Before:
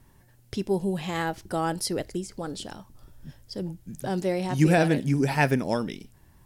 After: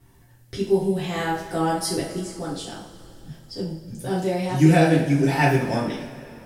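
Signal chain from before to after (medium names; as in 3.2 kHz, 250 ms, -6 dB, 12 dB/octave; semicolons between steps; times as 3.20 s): two-slope reverb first 0.46 s, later 3.1 s, from -18 dB, DRR -7 dB; trim -4.5 dB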